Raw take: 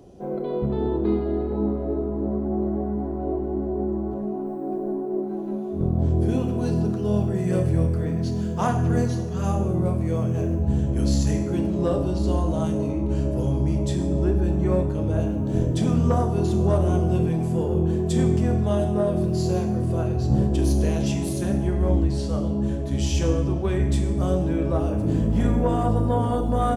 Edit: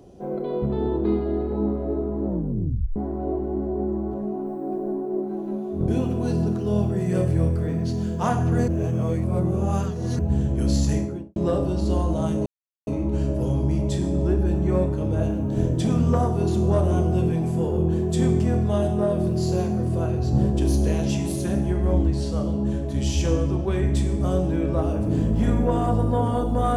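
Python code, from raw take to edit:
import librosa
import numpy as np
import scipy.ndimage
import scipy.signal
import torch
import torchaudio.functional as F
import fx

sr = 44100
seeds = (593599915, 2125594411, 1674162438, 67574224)

y = fx.studio_fade_out(x, sr, start_s=11.31, length_s=0.43)
y = fx.edit(y, sr, fx.tape_stop(start_s=2.27, length_s=0.69),
    fx.cut(start_s=5.88, length_s=0.38),
    fx.reverse_span(start_s=9.06, length_s=1.51),
    fx.insert_silence(at_s=12.84, length_s=0.41), tone=tone)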